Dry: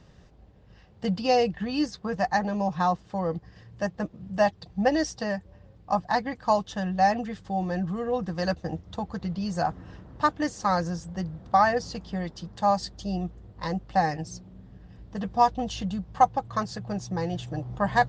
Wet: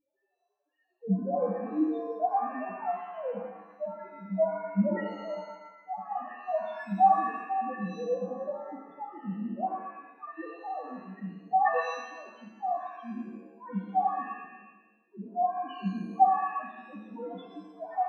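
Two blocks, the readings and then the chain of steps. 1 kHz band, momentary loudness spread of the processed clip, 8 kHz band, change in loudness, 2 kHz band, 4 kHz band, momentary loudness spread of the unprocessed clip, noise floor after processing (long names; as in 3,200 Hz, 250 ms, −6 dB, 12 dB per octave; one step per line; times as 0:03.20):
−2.5 dB, 18 LU, below −20 dB, −3.5 dB, −9.0 dB, below −15 dB, 11 LU, −75 dBFS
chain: three sine waves on the formant tracks
dynamic equaliser 1,200 Hz, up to −7 dB, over −43 dBFS, Q 3.7
spectral peaks only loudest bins 1
reverb with rising layers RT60 1 s, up +7 semitones, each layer −8 dB, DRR 1 dB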